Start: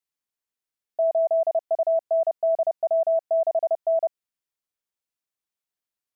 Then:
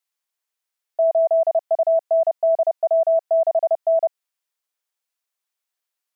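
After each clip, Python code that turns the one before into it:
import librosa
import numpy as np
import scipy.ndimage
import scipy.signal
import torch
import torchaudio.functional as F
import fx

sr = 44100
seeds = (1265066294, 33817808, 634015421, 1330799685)

y = scipy.signal.sosfilt(scipy.signal.butter(2, 560.0, 'highpass', fs=sr, output='sos'), x)
y = F.gain(torch.from_numpy(y), 6.0).numpy()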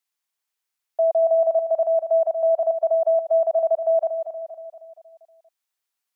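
y = fx.peak_eq(x, sr, hz=550.0, db=-5.5, octaves=0.3)
y = fx.echo_feedback(y, sr, ms=236, feedback_pct=52, wet_db=-8.5)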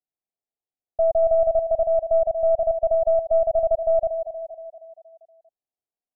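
y = fx.tracing_dist(x, sr, depth_ms=0.12)
y = scipy.signal.sosfilt(scipy.signal.ellip(4, 1.0, 80, 740.0, 'lowpass', fs=sr, output='sos'), y)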